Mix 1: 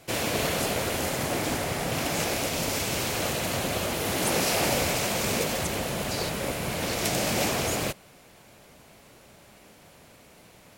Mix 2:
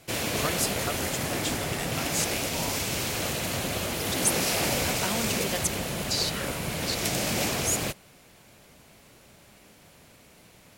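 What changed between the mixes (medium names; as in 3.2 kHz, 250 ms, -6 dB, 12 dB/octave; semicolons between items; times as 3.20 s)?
speech +8.5 dB; background: add peaking EQ 700 Hz -3.5 dB 2.3 oct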